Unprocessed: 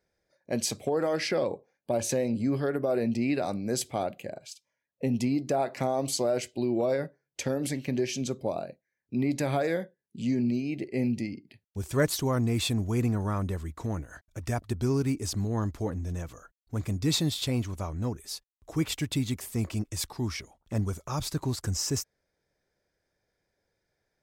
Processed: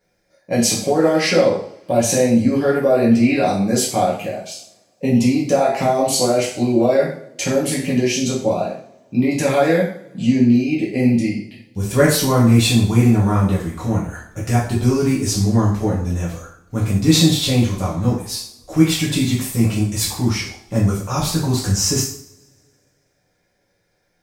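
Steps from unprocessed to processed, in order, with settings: two-slope reverb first 0.52 s, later 2.1 s, from -28 dB, DRR -7 dB; trim +5 dB

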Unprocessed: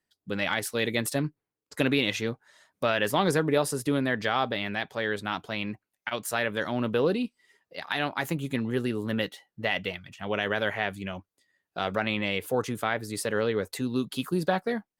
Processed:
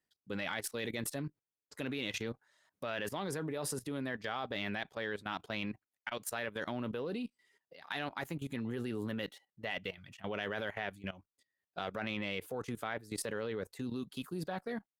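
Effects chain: level held to a coarse grid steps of 17 dB; Chebyshev shaper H 5 -31 dB, 8 -44 dB, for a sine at -16.5 dBFS; trim -4.5 dB

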